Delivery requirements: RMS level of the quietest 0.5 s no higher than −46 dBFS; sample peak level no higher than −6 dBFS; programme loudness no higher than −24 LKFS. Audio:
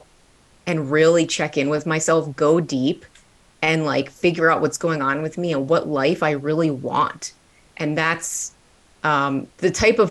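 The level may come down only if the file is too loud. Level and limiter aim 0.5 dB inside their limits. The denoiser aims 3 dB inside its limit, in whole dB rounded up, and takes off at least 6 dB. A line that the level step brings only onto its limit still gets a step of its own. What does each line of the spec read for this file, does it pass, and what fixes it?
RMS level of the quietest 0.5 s −55 dBFS: in spec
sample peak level −4.5 dBFS: out of spec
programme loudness −20.5 LKFS: out of spec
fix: level −4 dB

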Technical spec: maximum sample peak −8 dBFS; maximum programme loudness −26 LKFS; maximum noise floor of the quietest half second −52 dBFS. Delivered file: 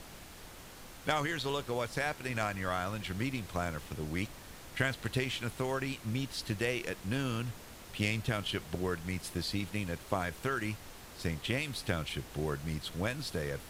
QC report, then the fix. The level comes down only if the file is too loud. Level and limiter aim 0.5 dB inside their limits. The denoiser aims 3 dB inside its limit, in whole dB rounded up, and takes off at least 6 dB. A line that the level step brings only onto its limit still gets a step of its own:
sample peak −17.5 dBFS: in spec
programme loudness −35.5 LKFS: in spec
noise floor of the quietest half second −50 dBFS: out of spec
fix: broadband denoise 6 dB, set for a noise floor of −50 dBFS

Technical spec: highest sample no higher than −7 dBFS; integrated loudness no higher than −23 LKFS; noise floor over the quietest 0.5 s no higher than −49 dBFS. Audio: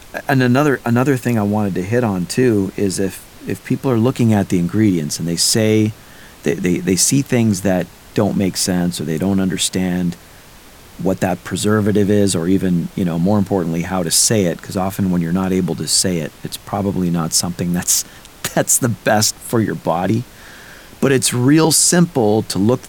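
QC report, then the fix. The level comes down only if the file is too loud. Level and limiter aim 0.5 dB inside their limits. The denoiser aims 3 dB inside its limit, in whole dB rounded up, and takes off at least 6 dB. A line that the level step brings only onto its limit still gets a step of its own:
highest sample −2.5 dBFS: out of spec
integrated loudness −16.5 LKFS: out of spec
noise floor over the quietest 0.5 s −41 dBFS: out of spec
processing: broadband denoise 6 dB, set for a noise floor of −41 dBFS
level −7 dB

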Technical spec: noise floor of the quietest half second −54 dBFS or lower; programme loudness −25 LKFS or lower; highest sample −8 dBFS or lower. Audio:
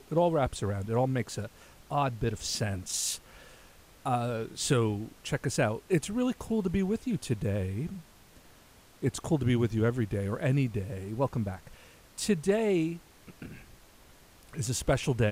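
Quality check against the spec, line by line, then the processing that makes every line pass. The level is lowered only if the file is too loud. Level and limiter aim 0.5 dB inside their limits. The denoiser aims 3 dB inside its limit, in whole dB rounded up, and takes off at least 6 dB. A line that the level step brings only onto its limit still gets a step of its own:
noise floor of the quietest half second −57 dBFS: in spec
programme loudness −30.5 LKFS: in spec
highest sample −12.5 dBFS: in spec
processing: no processing needed

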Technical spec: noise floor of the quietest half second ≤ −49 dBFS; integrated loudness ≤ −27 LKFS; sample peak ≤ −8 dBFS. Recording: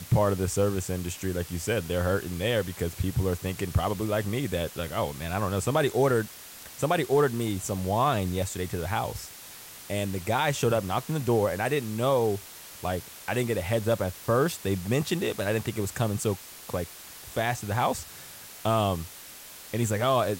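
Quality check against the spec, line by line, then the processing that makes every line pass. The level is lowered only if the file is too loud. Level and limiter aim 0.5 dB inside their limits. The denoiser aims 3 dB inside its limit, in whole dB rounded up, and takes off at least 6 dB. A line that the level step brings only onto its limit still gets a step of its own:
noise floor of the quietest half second −45 dBFS: out of spec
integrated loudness −28.0 LKFS: in spec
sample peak −13.5 dBFS: in spec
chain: broadband denoise 7 dB, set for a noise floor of −45 dBFS

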